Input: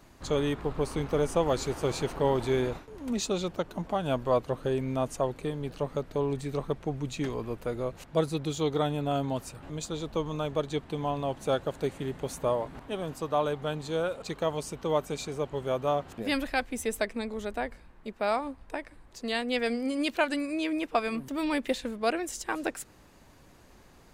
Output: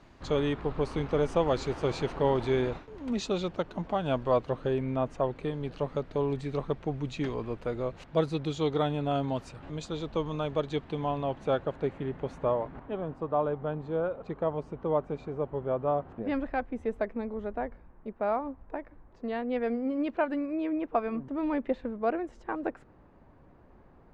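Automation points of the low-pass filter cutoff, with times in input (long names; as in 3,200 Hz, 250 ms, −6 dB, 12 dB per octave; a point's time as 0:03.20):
0:04.54 4,200 Hz
0:05.07 2,300 Hz
0:05.56 4,200 Hz
0:10.80 4,200 Hz
0:11.88 2,100 Hz
0:12.61 2,100 Hz
0:13.16 1,200 Hz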